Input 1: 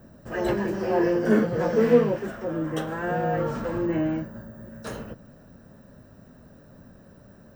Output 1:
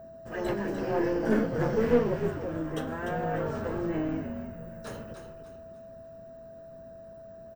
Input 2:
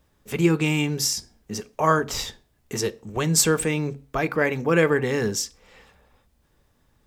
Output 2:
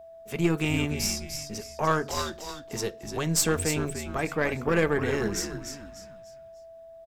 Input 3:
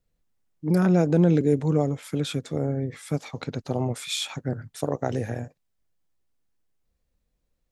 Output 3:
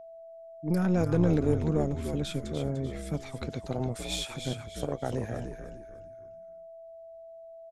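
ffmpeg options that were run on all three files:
-filter_complex "[0:a]asplit=5[a][b][c][d][e];[b]adelay=297,afreqshift=-73,volume=-7.5dB[f];[c]adelay=594,afreqshift=-146,volume=-16.4dB[g];[d]adelay=891,afreqshift=-219,volume=-25.2dB[h];[e]adelay=1188,afreqshift=-292,volume=-34.1dB[i];[a][f][g][h][i]amix=inputs=5:normalize=0,aeval=exprs='0.596*(cos(1*acos(clip(val(0)/0.596,-1,1)))-cos(1*PI/2))+0.0376*(cos(6*acos(clip(val(0)/0.596,-1,1)))-cos(6*PI/2))':c=same,aeval=exprs='val(0)+0.0112*sin(2*PI*660*n/s)':c=same,volume=-5.5dB"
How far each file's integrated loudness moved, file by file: -5.5, -4.5, -5.0 LU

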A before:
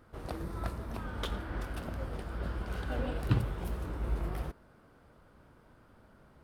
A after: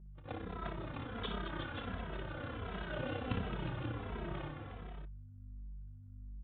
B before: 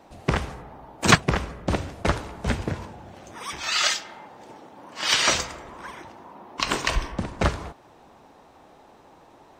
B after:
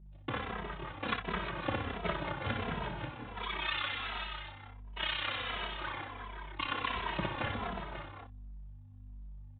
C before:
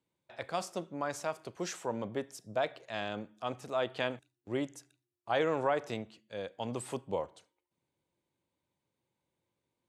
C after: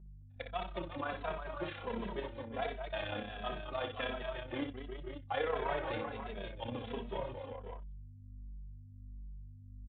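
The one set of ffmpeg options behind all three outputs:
-filter_complex "[0:a]aemphasis=mode=production:type=75fm,agate=range=-29dB:threshold=-40dB:ratio=16:detection=peak,highpass=f=84:w=0.5412,highpass=f=84:w=1.3066,adynamicequalizer=threshold=0.0126:dfrequency=1200:dqfactor=0.9:tfrequency=1200:tqfactor=0.9:attack=5:release=100:ratio=0.375:range=2.5:mode=boostabove:tftype=bell,acompressor=threshold=-24dB:ratio=5,aresample=16000,asoftclip=type=tanh:threshold=-19.5dB,aresample=44100,tremolo=f=32:d=0.75,asplit=2[a][b];[b]aeval=exprs='0.0168*(abs(mod(val(0)/0.0168+3,4)-2)-1)':c=same,volume=-7.5dB[c];[a][c]amix=inputs=2:normalize=0,aeval=exprs='val(0)+0.00316*(sin(2*PI*50*n/s)+sin(2*PI*2*50*n/s)/2+sin(2*PI*3*50*n/s)/3+sin(2*PI*4*50*n/s)/4+sin(2*PI*5*50*n/s)/5)':c=same,aecho=1:1:58|217|360|511|537:0.473|0.398|0.398|0.211|0.335,aresample=8000,aresample=44100,asplit=2[d][e];[e]adelay=2.7,afreqshift=-1.4[f];[d][f]amix=inputs=2:normalize=1"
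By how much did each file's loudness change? -5.5, -12.5, -3.5 LU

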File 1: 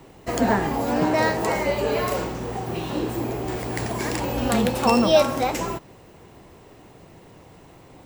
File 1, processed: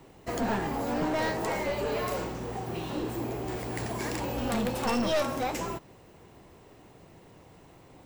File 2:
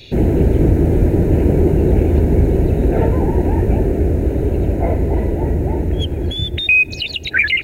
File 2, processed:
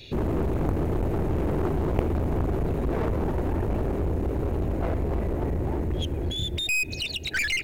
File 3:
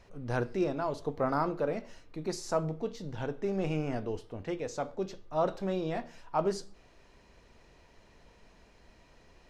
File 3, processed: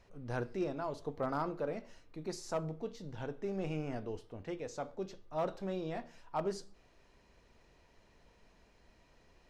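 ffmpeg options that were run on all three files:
-af "aeval=exprs='0.891*(cos(1*acos(clip(val(0)/0.891,-1,1)))-cos(1*PI/2))+0.398*(cos(3*acos(clip(val(0)/0.891,-1,1)))-cos(3*PI/2))+0.224*(cos(5*acos(clip(val(0)/0.891,-1,1)))-cos(5*PI/2))':c=same,aeval=exprs='clip(val(0),-1,0.0708)':c=same,volume=-5dB"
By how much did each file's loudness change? -8.0, -11.5, -6.0 LU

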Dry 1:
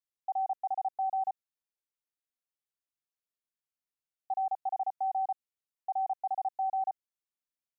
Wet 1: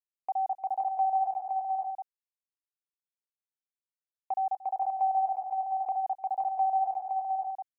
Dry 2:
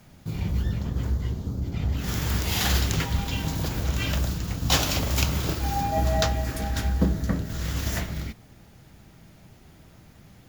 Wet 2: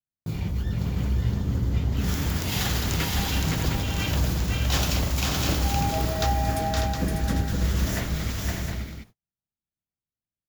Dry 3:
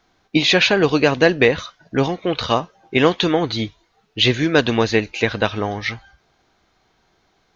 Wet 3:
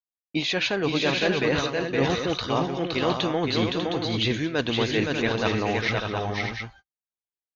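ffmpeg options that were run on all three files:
-af "agate=range=-53dB:threshold=-41dB:ratio=16:detection=peak,areverse,acompressor=threshold=-25dB:ratio=6,areverse,aecho=1:1:230|516|596|713:0.119|0.668|0.422|0.422,volume=2dB"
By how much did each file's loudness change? +3.5, +0.5, -7.0 LU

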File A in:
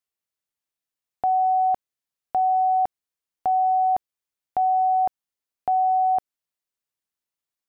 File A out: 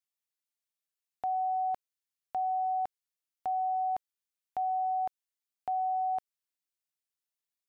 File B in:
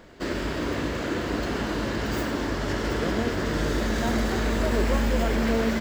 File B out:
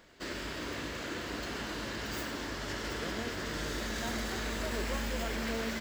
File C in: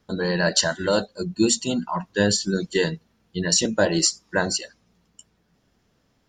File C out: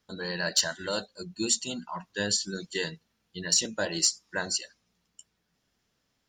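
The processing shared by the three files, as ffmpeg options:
-af "tiltshelf=f=1.3k:g=-5,asoftclip=type=hard:threshold=-5dB,volume=-8dB"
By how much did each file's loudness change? -10.5, -10.0, -6.0 LU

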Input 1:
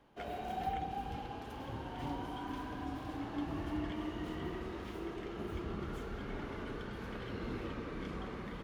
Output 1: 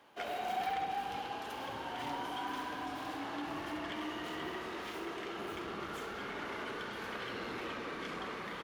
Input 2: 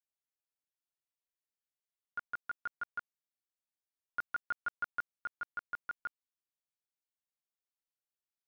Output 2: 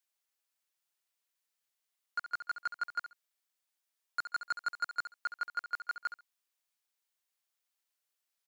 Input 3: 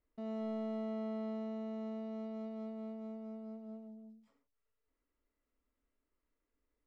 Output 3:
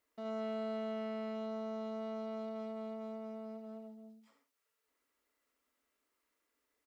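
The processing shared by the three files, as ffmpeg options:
-filter_complex "[0:a]asoftclip=type=tanh:threshold=-35dB,highpass=f=880:p=1,asplit=2[a][b];[b]aecho=0:1:68|136:0.282|0.0479[c];[a][c]amix=inputs=2:normalize=0,volume=9dB"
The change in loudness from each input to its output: +1.5, +3.5, +0.5 LU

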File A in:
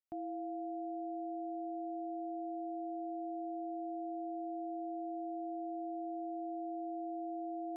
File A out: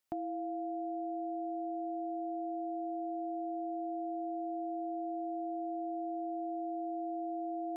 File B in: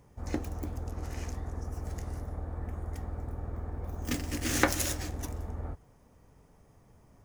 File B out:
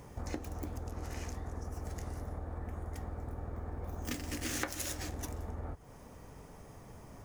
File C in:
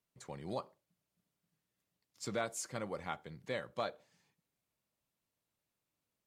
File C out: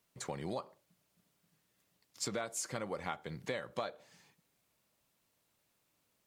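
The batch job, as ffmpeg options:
-af "acompressor=threshold=-45dB:ratio=6,lowshelf=f=240:g=-4,volume=10.5dB"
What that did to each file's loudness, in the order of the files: +3.0, -5.5, +1.0 LU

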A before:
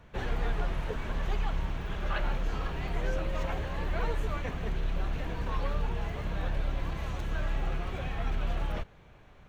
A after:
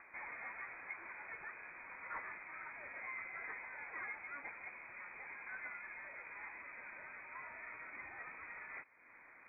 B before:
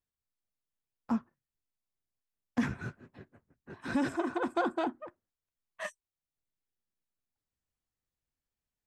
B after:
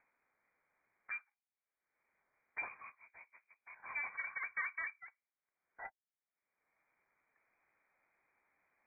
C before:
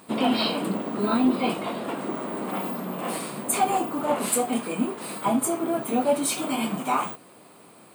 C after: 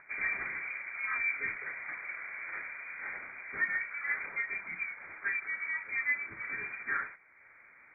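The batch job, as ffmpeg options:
-af "highpass=270,acompressor=mode=upward:threshold=-40dB:ratio=2.5,lowpass=f=2.2k:t=q:w=0.5098,lowpass=f=2.2k:t=q:w=0.6013,lowpass=f=2.2k:t=q:w=0.9,lowpass=f=2.2k:t=q:w=2.563,afreqshift=-2600,volume=-9dB"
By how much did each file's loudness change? -12.5, -8.0, -9.0 LU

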